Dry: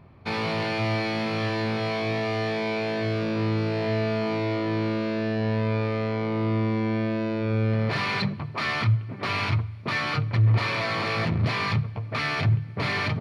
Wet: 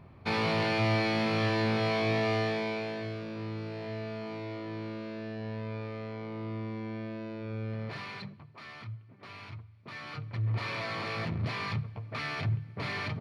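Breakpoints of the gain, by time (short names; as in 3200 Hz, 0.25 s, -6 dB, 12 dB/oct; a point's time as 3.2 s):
2.33 s -1.5 dB
3.23 s -12.5 dB
7.85 s -12.5 dB
8.59 s -20 dB
9.64 s -20 dB
10.71 s -8.5 dB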